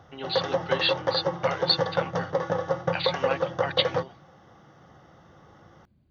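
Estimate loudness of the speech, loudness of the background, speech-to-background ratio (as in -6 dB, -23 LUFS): -29.0 LUFS, -28.5 LUFS, -0.5 dB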